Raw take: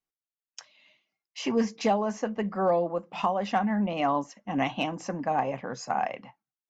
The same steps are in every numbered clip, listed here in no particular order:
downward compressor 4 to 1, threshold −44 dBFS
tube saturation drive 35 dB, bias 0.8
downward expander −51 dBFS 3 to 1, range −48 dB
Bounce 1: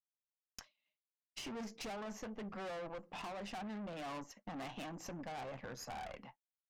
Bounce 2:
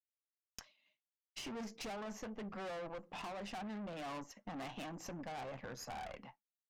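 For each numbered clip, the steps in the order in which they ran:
tube saturation, then downward expander, then downward compressor
downward expander, then tube saturation, then downward compressor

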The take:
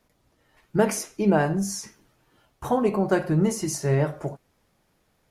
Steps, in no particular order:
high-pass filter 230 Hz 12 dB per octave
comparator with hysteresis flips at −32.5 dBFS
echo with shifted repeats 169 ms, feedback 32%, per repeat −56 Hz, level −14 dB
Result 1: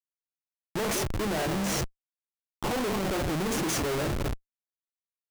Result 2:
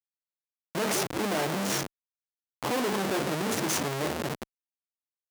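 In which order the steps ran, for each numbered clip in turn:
echo with shifted repeats, then high-pass filter, then comparator with hysteresis
echo with shifted repeats, then comparator with hysteresis, then high-pass filter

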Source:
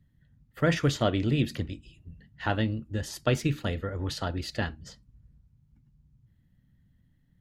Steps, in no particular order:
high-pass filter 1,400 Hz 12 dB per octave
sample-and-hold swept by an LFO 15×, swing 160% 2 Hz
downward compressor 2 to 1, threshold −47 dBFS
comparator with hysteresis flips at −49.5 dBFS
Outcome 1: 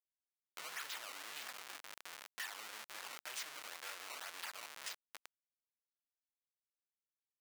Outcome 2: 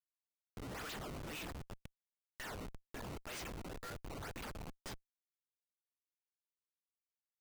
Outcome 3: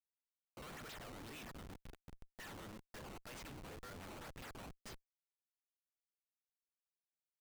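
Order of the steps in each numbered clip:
sample-and-hold swept by an LFO, then comparator with hysteresis, then high-pass filter, then downward compressor
high-pass filter, then sample-and-hold swept by an LFO, then comparator with hysteresis, then downward compressor
sample-and-hold swept by an LFO, then high-pass filter, then downward compressor, then comparator with hysteresis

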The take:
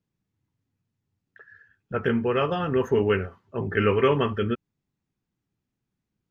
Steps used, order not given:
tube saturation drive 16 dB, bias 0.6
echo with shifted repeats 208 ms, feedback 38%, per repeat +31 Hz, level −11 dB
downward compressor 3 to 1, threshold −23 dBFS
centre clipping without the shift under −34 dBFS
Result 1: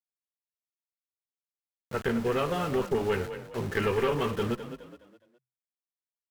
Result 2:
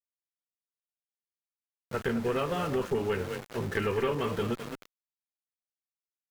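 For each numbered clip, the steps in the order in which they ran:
centre clipping without the shift, then tube saturation, then downward compressor, then echo with shifted repeats
echo with shifted repeats, then centre clipping without the shift, then downward compressor, then tube saturation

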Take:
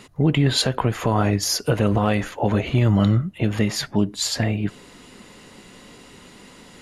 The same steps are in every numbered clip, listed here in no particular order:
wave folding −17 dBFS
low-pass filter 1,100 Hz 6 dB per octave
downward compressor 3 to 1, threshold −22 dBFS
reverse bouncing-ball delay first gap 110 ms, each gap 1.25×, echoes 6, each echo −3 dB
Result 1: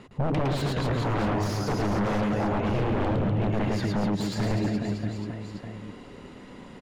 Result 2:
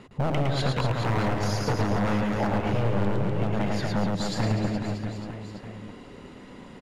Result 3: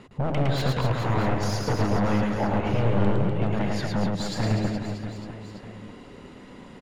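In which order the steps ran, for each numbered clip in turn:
reverse bouncing-ball delay, then wave folding, then downward compressor, then low-pass filter
low-pass filter, then wave folding, then reverse bouncing-ball delay, then downward compressor
wave folding, then low-pass filter, then downward compressor, then reverse bouncing-ball delay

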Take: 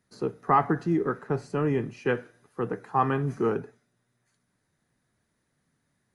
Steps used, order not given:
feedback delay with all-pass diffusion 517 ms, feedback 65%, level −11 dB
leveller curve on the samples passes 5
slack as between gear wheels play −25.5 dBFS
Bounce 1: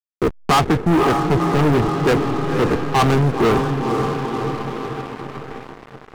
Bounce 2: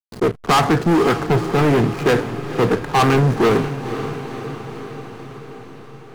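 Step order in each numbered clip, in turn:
slack as between gear wheels, then feedback delay with all-pass diffusion, then leveller curve on the samples
leveller curve on the samples, then slack as between gear wheels, then feedback delay with all-pass diffusion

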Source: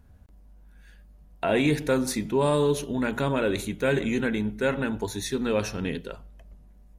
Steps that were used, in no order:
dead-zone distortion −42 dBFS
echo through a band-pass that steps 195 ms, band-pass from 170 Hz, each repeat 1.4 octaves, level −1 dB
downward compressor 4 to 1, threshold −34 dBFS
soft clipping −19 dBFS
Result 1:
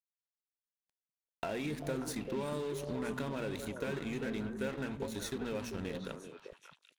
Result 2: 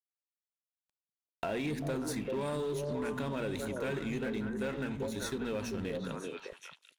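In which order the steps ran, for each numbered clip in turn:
soft clipping, then downward compressor, then dead-zone distortion, then echo through a band-pass that steps
dead-zone distortion, then echo through a band-pass that steps, then soft clipping, then downward compressor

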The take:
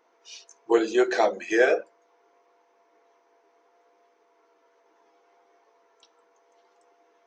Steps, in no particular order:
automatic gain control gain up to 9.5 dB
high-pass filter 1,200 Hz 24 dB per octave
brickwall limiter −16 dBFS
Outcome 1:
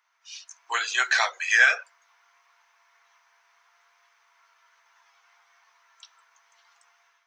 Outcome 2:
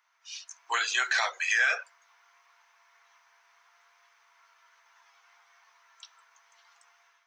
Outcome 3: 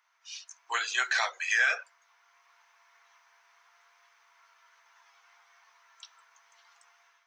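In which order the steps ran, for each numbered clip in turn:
high-pass filter, then brickwall limiter, then automatic gain control
high-pass filter, then automatic gain control, then brickwall limiter
automatic gain control, then high-pass filter, then brickwall limiter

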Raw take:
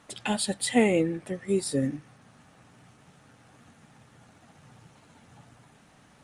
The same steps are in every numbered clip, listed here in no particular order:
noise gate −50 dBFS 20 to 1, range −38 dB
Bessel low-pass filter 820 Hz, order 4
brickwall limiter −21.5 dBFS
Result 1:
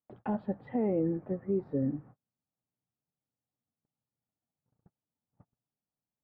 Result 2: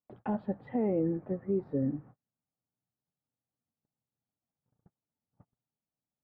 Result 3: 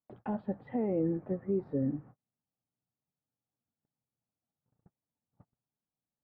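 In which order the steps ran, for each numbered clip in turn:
Bessel low-pass filter, then noise gate, then brickwall limiter
Bessel low-pass filter, then brickwall limiter, then noise gate
brickwall limiter, then Bessel low-pass filter, then noise gate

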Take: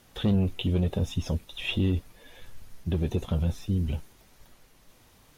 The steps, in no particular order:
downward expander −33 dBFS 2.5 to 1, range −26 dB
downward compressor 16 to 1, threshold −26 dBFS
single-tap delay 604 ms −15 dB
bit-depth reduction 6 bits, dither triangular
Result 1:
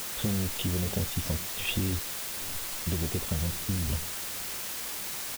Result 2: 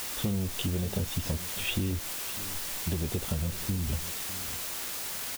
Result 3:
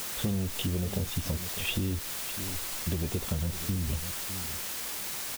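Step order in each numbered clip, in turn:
downward compressor, then single-tap delay, then downward expander, then bit-depth reduction
downward expander, then bit-depth reduction, then downward compressor, then single-tap delay
downward expander, then single-tap delay, then bit-depth reduction, then downward compressor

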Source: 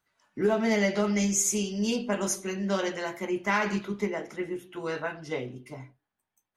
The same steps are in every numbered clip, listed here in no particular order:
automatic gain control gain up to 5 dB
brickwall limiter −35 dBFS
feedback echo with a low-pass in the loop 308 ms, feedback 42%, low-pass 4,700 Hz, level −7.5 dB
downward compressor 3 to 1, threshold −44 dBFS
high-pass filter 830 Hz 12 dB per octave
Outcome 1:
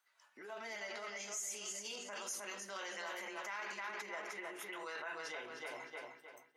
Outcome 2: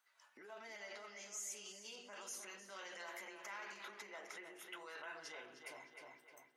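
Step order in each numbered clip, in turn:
feedback echo with a low-pass in the loop, then brickwall limiter, then high-pass filter, then downward compressor, then automatic gain control
brickwall limiter, then automatic gain control, then feedback echo with a low-pass in the loop, then downward compressor, then high-pass filter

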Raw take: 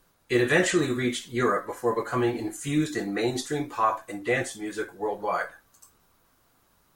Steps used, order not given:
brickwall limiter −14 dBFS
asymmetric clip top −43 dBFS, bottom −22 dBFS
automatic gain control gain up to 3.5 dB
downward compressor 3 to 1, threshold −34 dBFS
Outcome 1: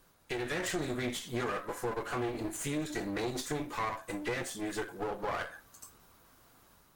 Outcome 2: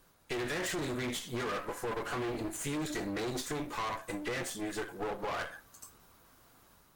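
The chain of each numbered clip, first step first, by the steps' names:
brickwall limiter, then downward compressor, then automatic gain control, then asymmetric clip
automatic gain control, then brickwall limiter, then asymmetric clip, then downward compressor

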